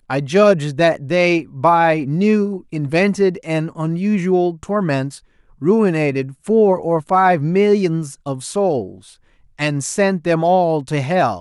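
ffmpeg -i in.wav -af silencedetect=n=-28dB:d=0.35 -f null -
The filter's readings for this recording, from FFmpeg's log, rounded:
silence_start: 5.16
silence_end: 5.62 | silence_duration: 0.46
silence_start: 8.92
silence_end: 9.59 | silence_duration: 0.67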